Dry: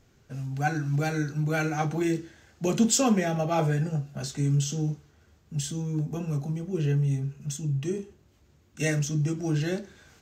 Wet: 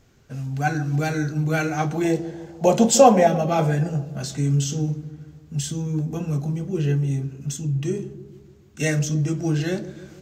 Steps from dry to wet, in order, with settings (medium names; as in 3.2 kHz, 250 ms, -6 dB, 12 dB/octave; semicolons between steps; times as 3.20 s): 2.04–3.27 s: high-order bell 690 Hz +12.5 dB 1.2 oct; feedback echo behind a low-pass 150 ms, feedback 55%, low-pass 590 Hz, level -11.5 dB; trim +4 dB